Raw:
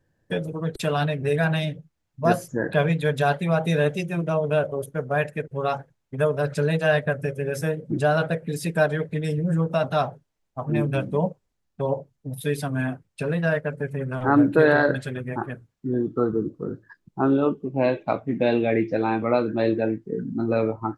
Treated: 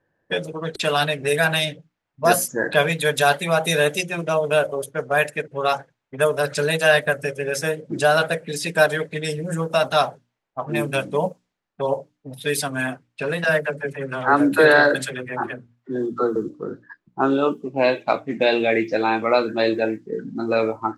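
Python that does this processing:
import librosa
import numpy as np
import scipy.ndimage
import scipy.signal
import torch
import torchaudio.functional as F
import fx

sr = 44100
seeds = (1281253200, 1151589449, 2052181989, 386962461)

y = fx.dispersion(x, sr, late='lows', ms=62.0, hz=370.0, at=(13.44, 16.36))
y = fx.env_lowpass(y, sr, base_hz=1600.0, full_db=-18.5)
y = fx.riaa(y, sr, side='recording')
y = fx.hum_notches(y, sr, base_hz=60, count=5)
y = F.gain(torch.from_numpy(y), 5.5).numpy()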